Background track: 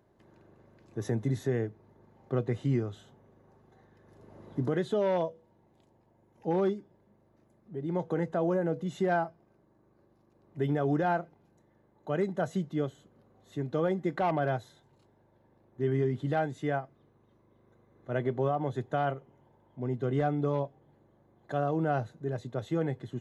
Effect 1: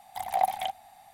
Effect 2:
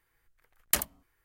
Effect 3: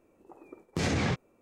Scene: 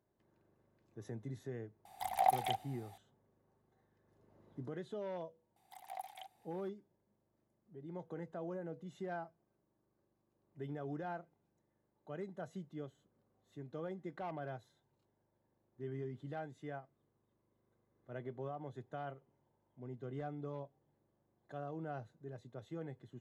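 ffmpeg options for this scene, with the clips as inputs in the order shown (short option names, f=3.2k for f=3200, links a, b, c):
-filter_complex "[1:a]asplit=2[a][b];[0:a]volume=-15dB[c];[b]highpass=f=860:p=1[d];[a]atrim=end=1.13,asetpts=PTS-STARTPTS,volume=-5dB,afade=t=in:d=0.004:c=hsin,afade=t=out:st=1.126:d=0.004:c=hsin,adelay=1850[e];[d]atrim=end=1.13,asetpts=PTS-STARTPTS,volume=-17.5dB,afade=t=in:d=0.004:c=hsin,afade=t=out:st=1.126:d=0.004:c=hsin,adelay=5560[f];[c][e][f]amix=inputs=3:normalize=0"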